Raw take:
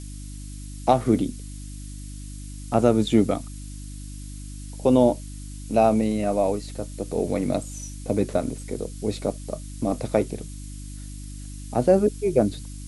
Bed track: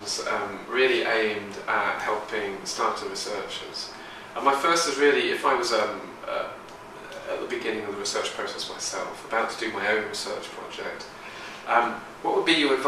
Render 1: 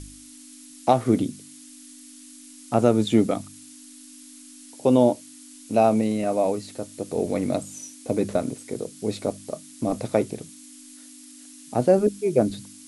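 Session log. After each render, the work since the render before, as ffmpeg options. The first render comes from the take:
-af "bandreject=f=50:t=h:w=4,bandreject=f=100:t=h:w=4,bandreject=f=150:t=h:w=4,bandreject=f=200:t=h:w=4"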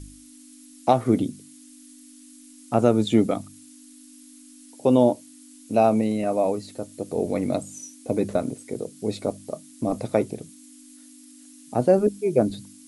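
-af "afftdn=nr=6:nf=-46"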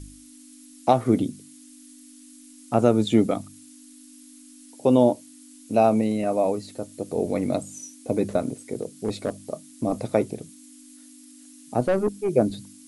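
-filter_complex "[0:a]asplit=3[a][b][c];[a]afade=t=out:st=8.73:d=0.02[d];[b]asoftclip=type=hard:threshold=-18dB,afade=t=in:st=8.73:d=0.02,afade=t=out:st=9.36:d=0.02[e];[c]afade=t=in:st=9.36:d=0.02[f];[d][e][f]amix=inputs=3:normalize=0,asettb=1/sr,asplit=3[g][h][i];[g]atrim=end=11.804[j];[h]atrim=start=11.8:end=12.29,asetpts=PTS-STARTPTS,afade=t=in:d=0.004:c=qsin,afade=t=out:st=0.486:d=0.004:c=qsin,aeval=exprs='(tanh(6.31*val(0)+0.3)-tanh(0.3))/6.31':c=same[k];[i]atrim=start=12.286[l];[j][k]acrossfade=d=0.004:c1=hsin:c2=qsin[m];[m][l]acrossfade=d=0.004:c1=qsin:c2=hsin"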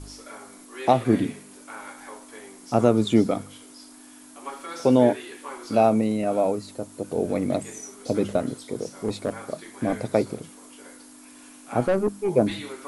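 -filter_complex "[1:a]volume=-15.5dB[a];[0:a][a]amix=inputs=2:normalize=0"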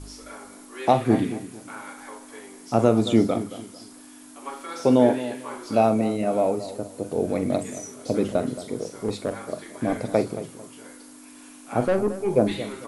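-filter_complex "[0:a]asplit=2[a][b];[b]adelay=44,volume=-11.5dB[c];[a][c]amix=inputs=2:normalize=0,asplit=2[d][e];[e]adelay=223,lowpass=f=2k:p=1,volume=-13.5dB,asplit=2[f][g];[g]adelay=223,lowpass=f=2k:p=1,volume=0.3,asplit=2[h][i];[i]adelay=223,lowpass=f=2k:p=1,volume=0.3[j];[d][f][h][j]amix=inputs=4:normalize=0"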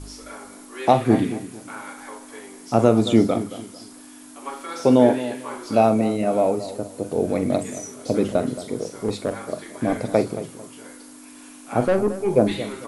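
-af "volume=2.5dB"

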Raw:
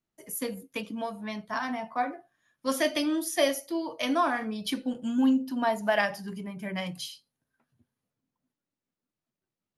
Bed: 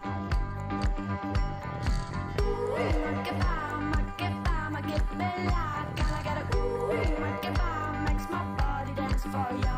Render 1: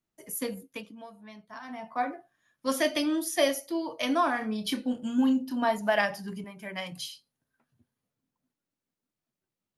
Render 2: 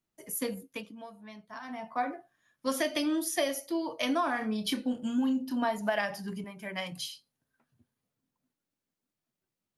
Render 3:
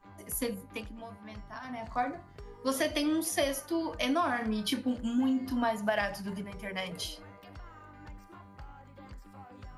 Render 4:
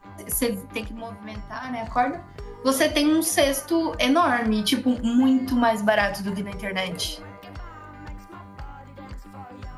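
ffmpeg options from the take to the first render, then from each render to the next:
-filter_complex "[0:a]asettb=1/sr,asplit=3[a][b][c];[a]atrim=end=4.384[d];[b]atrim=start=4.38:end=5.78,asetpts=PTS-STARTPTS,afade=t=in:d=0.004:c=qsin,afade=t=out:st=1.396:d=0.004:c=qsin,asplit=2[e][f];[f]adelay=28,volume=-8.5dB[g];[e][g]amix=inputs=2:normalize=0,atrim=end_sample=61740[h];[c]atrim=start=5.776[i];[d][h]acrossfade=d=0.004:c1=hsin:c2=qsin[j];[j][i]acrossfade=d=0.004:c1=qsin:c2=hsin,asettb=1/sr,asplit=3[k][l][m];[k]atrim=end=6.444[n];[l]atrim=start=6.44:end=6.92,asetpts=PTS-STARTPTS,afade=t=in:d=0.004:c=qsin,afade=t=out:st=0.476:d=0.004:c=qsin,highpass=f=470:p=1[o];[m]atrim=start=6.916[p];[n][o]acrossfade=d=0.004:c1=hsin:c2=qsin[q];[q][p]acrossfade=d=0.004:c1=qsin:c2=hsin,asplit=3[r][s][t];[r]atrim=end=0.95,asetpts=PTS-STARTPTS,afade=t=out:st=0.53:d=0.42:silence=0.251189[u];[s]atrim=start=0.95:end=1.63,asetpts=PTS-STARTPTS,volume=-12dB[v];[t]atrim=start=1.63,asetpts=PTS-STARTPTS,afade=t=in:d=0.42:silence=0.251189[w];[u][v][w]concat=n=3:v=0:a=1"
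-af "acompressor=threshold=-25dB:ratio=6"
-filter_complex "[1:a]volume=-19.5dB[a];[0:a][a]amix=inputs=2:normalize=0"
-af "volume=9.5dB"

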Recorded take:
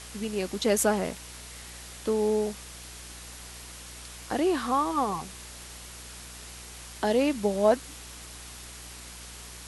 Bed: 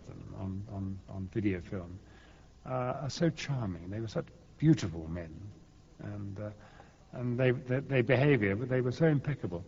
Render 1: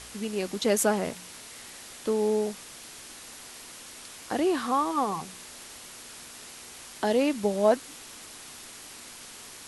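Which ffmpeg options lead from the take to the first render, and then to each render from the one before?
-af "bandreject=f=60:t=h:w=4,bandreject=f=120:t=h:w=4,bandreject=f=180:t=h:w=4"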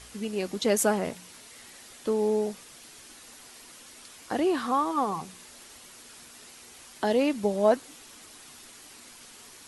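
-af "afftdn=nr=6:nf=-46"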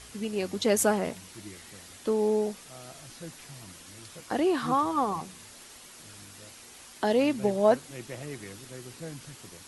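-filter_complex "[1:a]volume=-14dB[a];[0:a][a]amix=inputs=2:normalize=0"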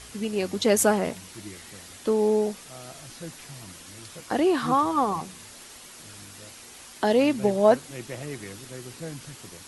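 -af "volume=3.5dB"

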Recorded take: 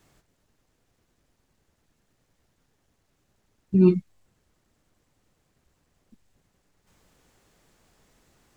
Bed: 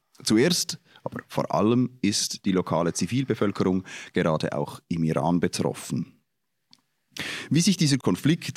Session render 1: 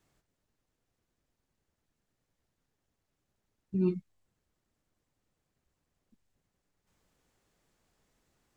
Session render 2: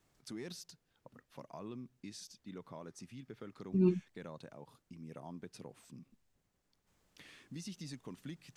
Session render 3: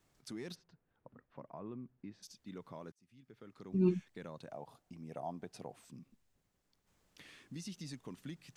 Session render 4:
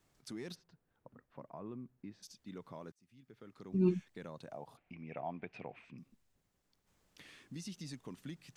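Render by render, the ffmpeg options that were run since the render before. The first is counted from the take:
-af "volume=-11.5dB"
-filter_complex "[1:a]volume=-25dB[a];[0:a][a]amix=inputs=2:normalize=0"
-filter_complex "[0:a]asplit=3[a][b][c];[a]afade=t=out:st=0.54:d=0.02[d];[b]lowpass=1.6k,afade=t=in:st=0.54:d=0.02,afade=t=out:st=2.22:d=0.02[e];[c]afade=t=in:st=2.22:d=0.02[f];[d][e][f]amix=inputs=3:normalize=0,asettb=1/sr,asplit=3[g][h][i];[g]atrim=end=4.484[j];[h]atrim=start=4.48:end=5.76,asetpts=PTS-STARTPTS,afade=t=in:d=0.004:c=qsin,afade=t=out:st=1.276:d=0.004:c=qsin,equalizer=f=710:w=2.4:g=12.5[k];[i]atrim=start=5.756[l];[j][k]acrossfade=d=0.004:c1=hsin:c2=qsin[m];[m][l]acrossfade=d=0.004:c1=qsin:c2=hsin,asplit=2[n][o];[n]atrim=end=2.92,asetpts=PTS-STARTPTS,afade=t=out:st=2.916:d=0.004:c=hsin[p];[o]atrim=start=2.92,asetpts=PTS-STARTPTS,afade=t=in:d=1.05[q];[p][q]concat=n=2:v=0:a=1"
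-filter_complex "[0:a]asettb=1/sr,asplit=3[a][b][c];[a]atrim=end=4.774[d];[b]atrim=start=4.77:end=5.98,asetpts=PTS-STARTPTS,afade=t=in:d=0.004:c=qsin,afade=t=out:st=1.206:d=0.004:c=qsin,lowpass=f=2.4k:t=q:w=5.6[e];[c]atrim=start=5.976[f];[d][e]acrossfade=d=0.004:c1=hsin:c2=qsin[g];[g][f]acrossfade=d=0.004:c1=qsin:c2=hsin"

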